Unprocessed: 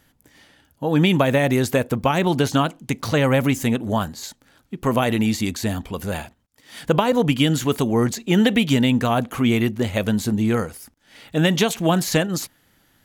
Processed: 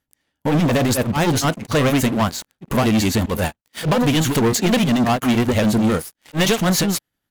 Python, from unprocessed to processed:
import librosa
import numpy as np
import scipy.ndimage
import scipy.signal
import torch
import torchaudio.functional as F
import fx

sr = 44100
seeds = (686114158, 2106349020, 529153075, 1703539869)

y = fx.leveller(x, sr, passes=5)
y = fx.stretch_grains(y, sr, factor=0.56, grain_ms=186.0)
y = y * 10.0 ** (-8.0 / 20.0)